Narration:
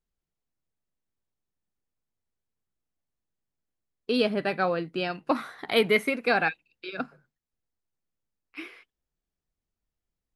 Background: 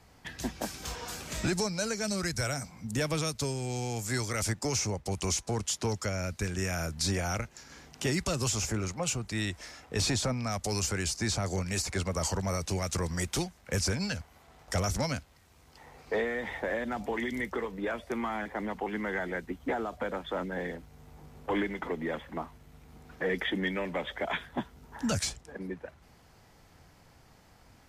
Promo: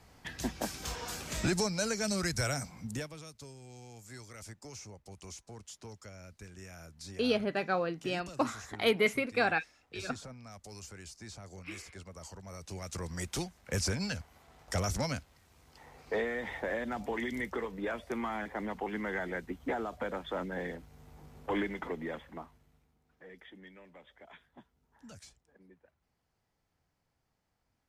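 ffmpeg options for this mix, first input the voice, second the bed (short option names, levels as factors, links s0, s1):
-filter_complex "[0:a]adelay=3100,volume=0.562[s0];[1:a]volume=5.01,afade=t=out:st=2.8:d=0.29:silence=0.149624,afade=t=in:st=12.44:d=1.27:silence=0.188365,afade=t=out:st=21.74:d=1.21:silence=0.105925[s1];[s0][s1]amix=inputs=2:normalize=0"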